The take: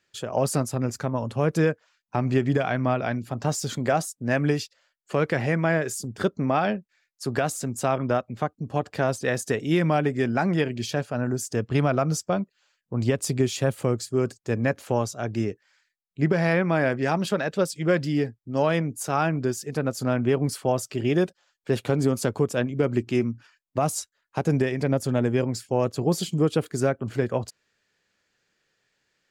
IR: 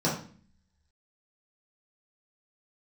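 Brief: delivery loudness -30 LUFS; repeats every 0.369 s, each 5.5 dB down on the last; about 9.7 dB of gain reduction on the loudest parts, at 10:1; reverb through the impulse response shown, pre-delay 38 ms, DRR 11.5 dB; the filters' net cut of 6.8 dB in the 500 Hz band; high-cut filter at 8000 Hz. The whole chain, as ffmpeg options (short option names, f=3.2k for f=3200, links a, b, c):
-filter_complex "[0:a]lowpass=8k,equalizer=f=500:t=o:g=-9,acompressor=threshold=-29dB:ratio=10,aecho=1:1:369|738|1107|1476|1845|2214|2583:0.531|0.281|0.149|0.079|0.0419|0.0222|0.0118,asplit=2[a][b];[1:a]atrim=start_sample=2205,adelay=38[c];[b][c]afir=irnorm=-1:irlink=0,volume=-23dB[d];[a][d]amix=inputs=2:normalize=0,volume=2dB"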